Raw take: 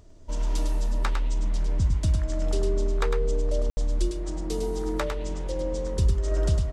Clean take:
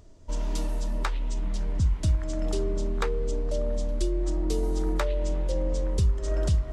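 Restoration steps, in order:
ambience match 0:03.70–0:03.77
echo removal 104 ms −5.5 dB

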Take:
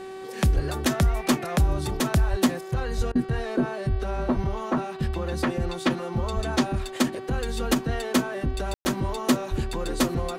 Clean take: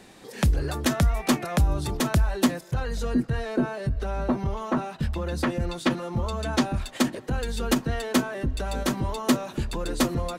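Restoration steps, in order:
hum removal 381 Hz, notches 13
high-pass at the plosives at 0:00.55/0:02.30/0:02.97/0:03.90/0:04.35/0:06.35/0:09.50
ambience match 0:08.74–0:08.85
repair the gap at 0:03.12, 32 ms

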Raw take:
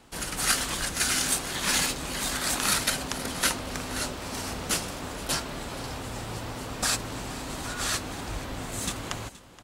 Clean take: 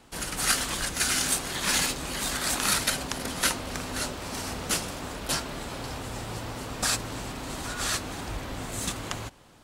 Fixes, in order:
echo removal 473 ms −18.5 dB

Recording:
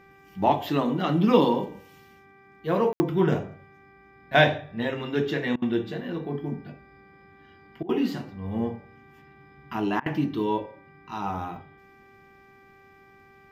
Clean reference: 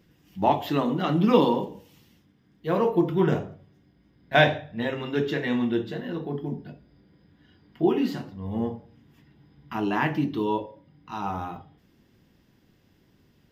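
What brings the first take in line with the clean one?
hum removal 391.5 Hz, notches 6
ambience match 0:02.93–0:03.00
repair the gap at 0:05.56/0:07.83/0:10.00, 59 ms

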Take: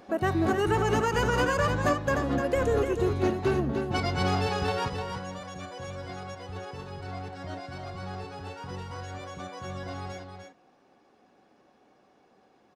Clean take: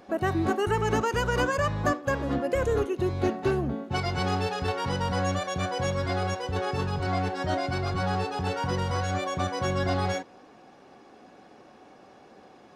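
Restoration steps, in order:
clipped peaks rebuilt −17 dBFS
echo removal 301 ms −6.5 dB
level correction +11 dB, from 0:04.88

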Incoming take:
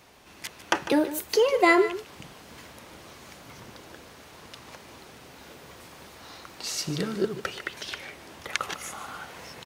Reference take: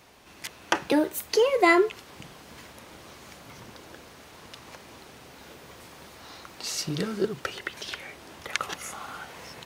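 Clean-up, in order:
echo removal 150 ms −14 dB

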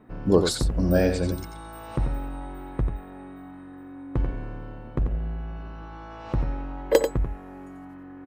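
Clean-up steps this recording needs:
clipped peaks rebuilt −5 dBFS
echo removal 90 ms −7.5 dB

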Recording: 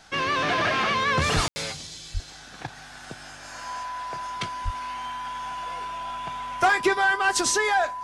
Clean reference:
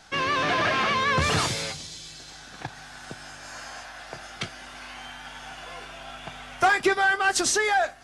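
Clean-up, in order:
notch filter 1,000 Hz, Q 30
0:01.35–0:01.47: high-pass filter 140 Hz 24 dB per octave
0:02.13–0:02.25: high-pass filter 140 Hz 24 dB per octave
0:04.64–0:04.76: high-pass filter 140 Hz 24 dB per octave
ambience match 0:01.48–0:01.56

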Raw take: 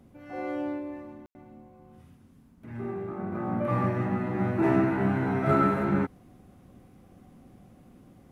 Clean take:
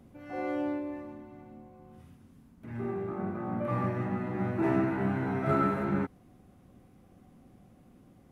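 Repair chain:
ambience match 0:01.26–0:01.35
level correction −4 dB, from 0:03.32

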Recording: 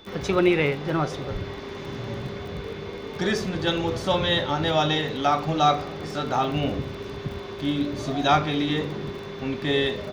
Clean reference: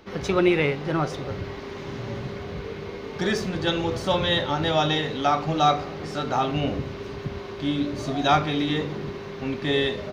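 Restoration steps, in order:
click removal
notch filter 3,500 Hz, Q 30
0:01.32–0:01.44: high-pass filter 140 Hz 24 dB per octave

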